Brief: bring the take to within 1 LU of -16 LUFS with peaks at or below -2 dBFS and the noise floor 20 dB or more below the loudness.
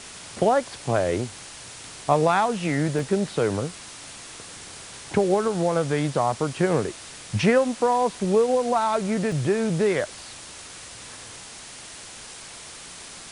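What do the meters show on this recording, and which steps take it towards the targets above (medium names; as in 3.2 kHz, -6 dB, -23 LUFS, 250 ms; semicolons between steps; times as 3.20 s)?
dropouts 2; longest dropout 2.4 ms; noise floor -42 dBFS; noise floor target -44 dBFS; loudness -23.5 LUFS; peak level -6.5 dBFS; loudness target -16.0 LUFS
-> interpolate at 2.99/9.32 s, 2.4 ms; noise reduction 6 dB, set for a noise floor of -42 dBFS; trim +7.5 dB; peak limiter -2 dBFS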